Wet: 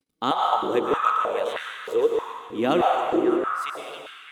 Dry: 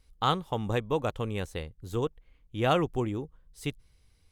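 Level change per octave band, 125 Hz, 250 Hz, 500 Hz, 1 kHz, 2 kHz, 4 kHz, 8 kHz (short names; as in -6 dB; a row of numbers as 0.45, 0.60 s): -11.5 dB, +6.5 dB, +8.0 dB, +10.0 dB, +7.0 dB, +3.5 dB, n/a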